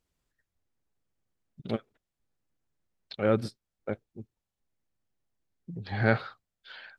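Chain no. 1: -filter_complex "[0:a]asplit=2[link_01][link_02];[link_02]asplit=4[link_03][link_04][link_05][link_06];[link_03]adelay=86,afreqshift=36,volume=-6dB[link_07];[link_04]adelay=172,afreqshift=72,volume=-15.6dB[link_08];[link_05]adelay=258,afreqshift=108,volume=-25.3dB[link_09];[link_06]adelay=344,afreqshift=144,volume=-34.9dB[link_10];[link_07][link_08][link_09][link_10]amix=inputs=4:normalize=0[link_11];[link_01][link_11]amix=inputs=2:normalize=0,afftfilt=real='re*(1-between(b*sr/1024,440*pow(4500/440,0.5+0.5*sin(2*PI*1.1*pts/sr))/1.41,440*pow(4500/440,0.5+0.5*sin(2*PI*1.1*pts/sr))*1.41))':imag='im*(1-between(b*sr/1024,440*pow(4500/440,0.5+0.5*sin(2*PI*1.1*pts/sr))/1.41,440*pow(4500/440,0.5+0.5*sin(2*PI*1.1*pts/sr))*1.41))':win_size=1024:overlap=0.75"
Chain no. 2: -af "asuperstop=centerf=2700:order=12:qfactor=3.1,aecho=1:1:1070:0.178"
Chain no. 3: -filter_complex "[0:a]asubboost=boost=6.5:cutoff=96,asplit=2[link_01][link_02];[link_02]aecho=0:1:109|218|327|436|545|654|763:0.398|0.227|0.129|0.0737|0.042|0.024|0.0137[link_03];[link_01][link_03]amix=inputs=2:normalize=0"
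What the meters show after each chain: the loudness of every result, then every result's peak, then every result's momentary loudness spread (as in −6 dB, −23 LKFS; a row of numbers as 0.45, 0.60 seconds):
−32.5, −32.0, −29.0 LKFS; −11.5, −8.5, −11.0 dBFS; 22, 22, 23 LU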